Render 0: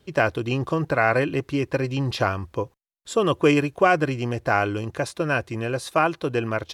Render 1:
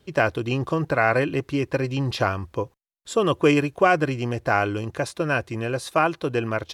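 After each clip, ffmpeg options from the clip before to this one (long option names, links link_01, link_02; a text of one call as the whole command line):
ffmpeg -i in.wav -af anull out.wav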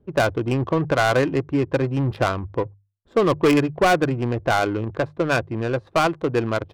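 ffmpeg -i in.wav -af "adynamicsmooth=sensitivity=1.5:basefreq=580,bandreject=frequency=50:width_type=h:width=6,bandreject=frequency=100:width_type=h:width=6,bandreject=frequency=150:width_type=h:width=6,asoftclip=type=hard:threshold=-15.5dB,volume=3.5dB" out.wav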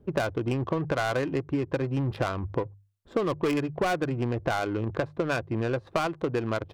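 ffmpeg -i in.wav -af "acompressor=threshold=-28dB:ratio=6,volume=3dB" out.wav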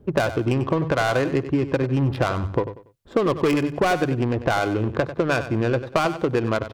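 ffmpeg -i in.wav -af "aecho=1:1:95|190|285:0.251|0.0703|0.0197,volume=6dB" out.wav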